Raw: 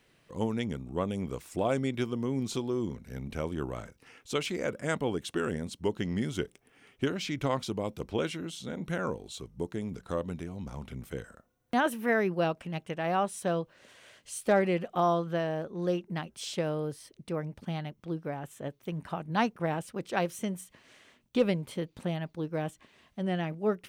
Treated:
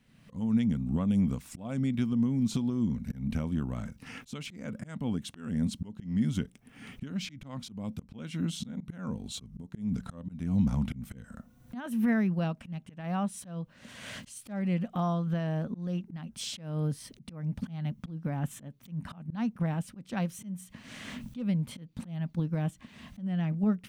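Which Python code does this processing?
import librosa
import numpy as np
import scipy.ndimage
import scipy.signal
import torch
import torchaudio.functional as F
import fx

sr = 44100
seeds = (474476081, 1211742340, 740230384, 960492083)

y = fx.recorder_agc(x, sr, target_db=-22.0, rise_db_per_s=35.0, max_gain_db=30)
y = fx.low_shelf_res(y, sr, hz=290.0, db=7.5, q=3.0)
y = fx.auto_swell(y, sr, attack_ms=257.0)
y = F.gain(torch.from_numpy(y), -6.0).numpy()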